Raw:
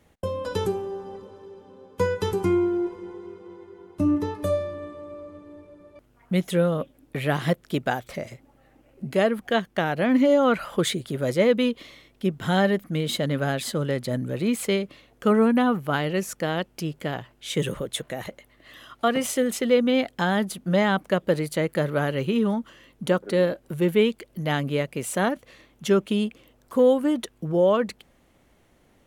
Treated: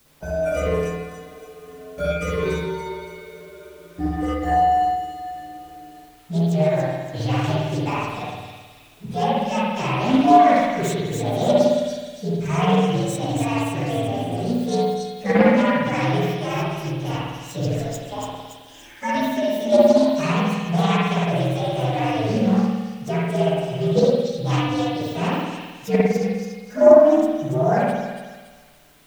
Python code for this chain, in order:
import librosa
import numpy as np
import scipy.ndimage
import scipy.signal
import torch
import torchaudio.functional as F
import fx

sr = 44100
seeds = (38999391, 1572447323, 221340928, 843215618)

p1 = fx.partial_stretch(x, sr, pct=126)
p2 = fx.level_steps(p1, sr, step_db=18)
p3 = p1 + (p2 * 10.0 ** (3.0 / 20.0))
p4 = fx.dmg_noise_colour(p3, sr, seeds[0], colour='white', level_db=-55.0)
p5 = fx.echo_wet_highpass(p4, sr, ms=284, feedback_pct=44, hz=3100.0, wet_db=-3.5)
p6 = fx.rev_spring(p5, sr, rt60_s=1.3, pass_ms=(53,), chirp_ms=30, drr_db=-5.5)
p7 = fx.doppler_dist(p6, sr, depth_ms=0.24)
y = p7 * 10.0 ** (-4.5 / 20.0)